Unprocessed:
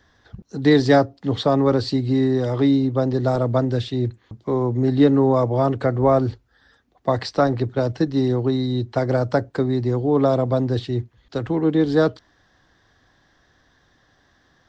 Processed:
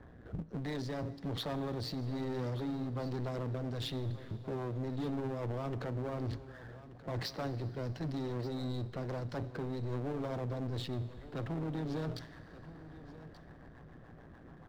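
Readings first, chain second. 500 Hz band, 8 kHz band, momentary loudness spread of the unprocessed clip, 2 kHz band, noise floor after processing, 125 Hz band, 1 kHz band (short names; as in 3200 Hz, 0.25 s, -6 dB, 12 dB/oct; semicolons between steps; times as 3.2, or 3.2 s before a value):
-20.5 dB, n/a, 8 LU, -17.0 dB, -54 dBFS, -14.5 dB, -19.0 dB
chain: low-pass opened by the level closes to 970 Hz, open at -16 dBFS; bell 160 Hz +8.5 dB 0.3 oct; reverse; compressor 12:1, threshold -26 dBFS, peak gain reduction 18 dB; reverse; limiter -27 dBFS, peak gain reduction 10.5 dB; rotary speaker horn 1.2 Hz, later 7 Hz, at 8.6; AM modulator 120 Hz, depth 60%; soft clip -36.5 dBFS, distortion -11 dB; power-law curve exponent 0.7; on a send: echo 1.181 s -16 dB; on the sum: Schroeder reverb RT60 3.5 s, combs from 25 ms, DRR 16.5 dB; gain +4.5 dB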